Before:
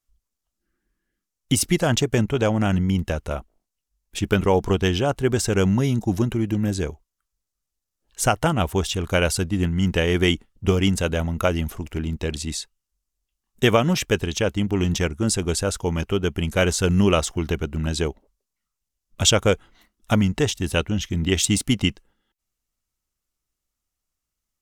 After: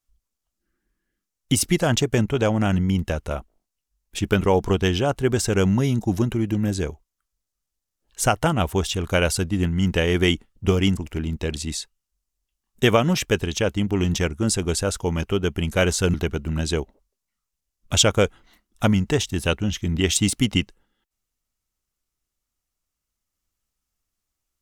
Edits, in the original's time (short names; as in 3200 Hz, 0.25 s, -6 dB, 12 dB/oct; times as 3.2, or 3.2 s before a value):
10.97–11.77 cut
16.94–17.42 cut